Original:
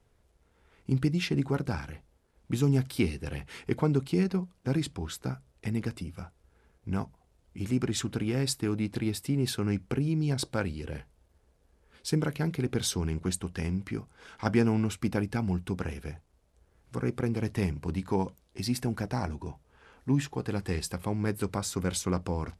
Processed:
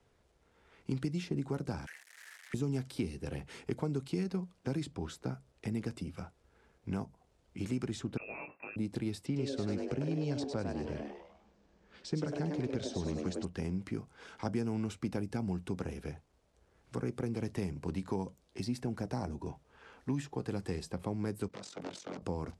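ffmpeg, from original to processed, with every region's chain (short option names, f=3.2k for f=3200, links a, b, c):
-filter_complex "[0:a]asettb=1/sr,asplit=3[a][b][c];[a]atrim=end=1.864[d];[b]atrim=start=1.86:end=2.54,asetpts=PTS-STARTPTS,afade=t=in:d=0.004:c=qsin,afade=t=out:st=0.676:d=0.004:c=qsin,aeval=exprs='val(0)+0.5*0.00668*sgn(val(0))':c=same,highpass=f=1.8k:t=q:w=6.8,highshelf=f=7.6k:g=5.5[e];[c]atrim=start=2.536[f];[d][e]acrossfade=d=0.004:c1=hsin:c2=qsin[g];[g][f]acrossfade=d=0.004:c1=qsin:c2=hsin,asettb=1/sr,asplit=3[h][i][j];[h]atrim=end=8.174[k];[i]atrim=start=8.17:end=8.76,asetpts=PTS-STARTPTS,afade=t=in:d=0.004:c=qsin,afade=t=out:st=0.586:d=0.004:c=qsin,aemphasis=mode=production:type=bsi,asplit=2[l][m];[m]adelay=20,volume=-3dB[n];[l][n]amix=inputs=2:normalize=0,atrim=end_sample=26019,lowpass=f=2.4k:t=q:w=0.5098,lowpass=f=2.4k:t=q:w=0.6013,lowpass=f=2.4k:t=q:w=0.9,lowpass=f=2.4k:t=q:w=2.563,afreqshift=-2800[o];[j]atrim=start=8.756[p];[k][o]acrossfade=d=0.004:c1=hsin:c2=qsin[q];[q][p]acrossfade=d=0.004:c1=qsin:c2=hsin,asettb=1/sr,asplit=3[r][s][t];[r]atrim=end=9.264[u];[s]atrim=start=9.26:end=13.45,asetpts=PTS-STARTPTS,afade=t=in:d=0.004:c=qsin,afade=t=out:st=4.186:d=0.004:c=qsin,lowpass=f=7.2k:w=0.5412,lowpass=f=7.2k:w=1.3066,asplit=6[v][w][x][y][z][aa];[w]adelay=100,afreqshift=140,volume=-5.5dB[ab];[x]adelay=200,afreqshift=280,volume=-13.5dB[ac];[y]adelay=300,afreqshift=420,volume=-21.4dB[ad];[z]adelay=400,afreqshift=560,volume=-29.4dB[ae];[aa]adelay=500,afreqshift=700,volume=-37.3dB[af];[v][ab][ac][ad][ae][af]amix=inputs=6:normalize=0,atrim=end_sample=184779[ag];[t]atrim=start=13.446[ah];[u][ag]acrossfade=d=0.004:c1=hsin:c2=qsin[ai];[ai][ah]acrossfade=d=0.004:c1=qsin:c2=hsin,asettb=1/sr,asplit=3[aj][ak][al];[aj]atrim=end=21.484[am];[ak]atrim=start=21.48:end=22.22,asetpts=PTS-STARTPTS,afade=t=in:d=0.004:c=qsin,afade=t=out:st=0.736:d=0.004:c=qsin,aeval=exprs='0.0335*(abs(mod(val(0)/0.0335+3,4)-2)-1)':c=same,tremolo=f=44:d=0.75,highpass=220,lowpass=6.3k[an];[al]atrim=start=22.216[ao];[am][an]acrossfade=d=0.004:c1=hsin:c2=qsin[ap];[ap][ao]acrossfade=d=0.004:c1=qsin:c2=hsin,lowpass=8k,lowshelf=f=100:g=-10,acrossover=split=170|810|5800[aq][ar][as][at];[aq]acompressor=threshold=-40dB:ratio=4[au];[ar]acompressor=threshold=-36dB:ratio=4[av];[as]acompressor=threshold=-53dB:ratio=4[aw];[at]acompressor=threshold=-55dB:ratio=4[ax];[au][av][aw][ax]amix=inputs=4:normalize=0,volume=1dB"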